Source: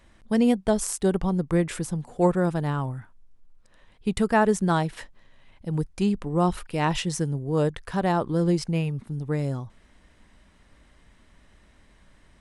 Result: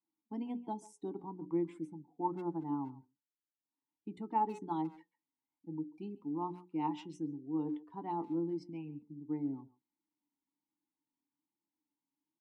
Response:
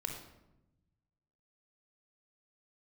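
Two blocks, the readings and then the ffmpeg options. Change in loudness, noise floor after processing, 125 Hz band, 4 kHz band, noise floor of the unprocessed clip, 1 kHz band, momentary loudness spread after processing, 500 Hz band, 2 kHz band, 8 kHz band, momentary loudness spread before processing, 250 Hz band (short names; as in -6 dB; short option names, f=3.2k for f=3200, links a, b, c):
-14.0 dB, under -85 dBFS, -22.0 dB, -24.5 dB, -58 dBFS, -9.5 dB, 10 LU, -17.5 dB, -28.5 dB, under -30 dB, 10 LU, -12.5 dB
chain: -filter_complex "[0:a]highpass=100,bandreject=f=60:t=h:w=6,bandreject=f=120:t=h:w=6,bandreject=f=180:t=h:w=6,bandreject=f=240:t=h:w=6,bandreject=f=300:t=h:w=6,bandreject=f=360:t=h:w=6,bandreject=f=420:t=h:w=6,bandreject=f=480:t=h:w=6,bandreject=f=540:t=h:w=6,afftdn=nr=20:nf=-37,equalizer=f=2.4k:t=o:w=0.55:g=-13.5,acrossover=split=230[a][b];[a]acompressor=threshold=-33dB:ratio=2[c];[c][b]amix=inputs=2:normalize=0,flanger=delay=5.8:depth=1.6:regen=55:speed=1.2:shape=sinusoidal,asplit=3[d][e][f];[d]bandpass=f=300:t=q:w=8,volume=0dB[g];[e]bandpass=f=870:t=q:w=8,volume=-6dB[h];[f]bandpass=f=2.24k:t=q:w=8,volume=-9dB[i];[g][h][i]amix=inputs=3:normalize=0,asplit=2[j][k];[k]adelay=140,highpass=300,lowpass=3.4k,asoftclip=type=hard:threshold=-35.5dB,volume=-19dB[l];[j][l]amix=inputs=2:normalize=0,adynamicequalizer=threshold=0.00141:dfrequency=1900:dqfactor=0.7:tfrequency=1900:tqfactor=0.7:attack=5:release=100:ratio=0.375:range=3:mode=boostabove:tftype=highshelf,volume=3dB"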